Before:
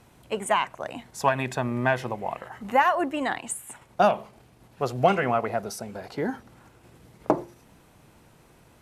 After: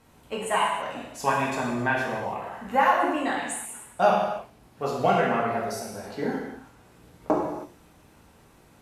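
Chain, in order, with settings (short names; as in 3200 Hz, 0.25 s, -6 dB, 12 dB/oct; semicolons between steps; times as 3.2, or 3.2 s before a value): non-linear reverb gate 0.35 s falling, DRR -5 dB; gain -5.5 dB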